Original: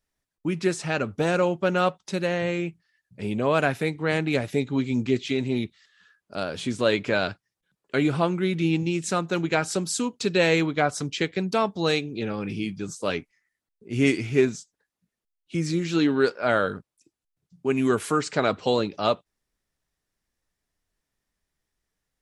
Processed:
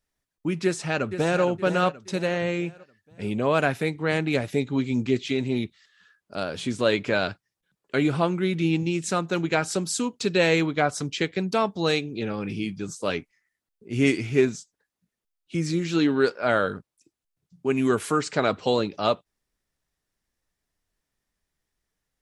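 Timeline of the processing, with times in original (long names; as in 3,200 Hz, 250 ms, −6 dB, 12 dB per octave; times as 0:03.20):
0:00.64–0:01.42: delay throw 470 ms, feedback 40%, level −10 dB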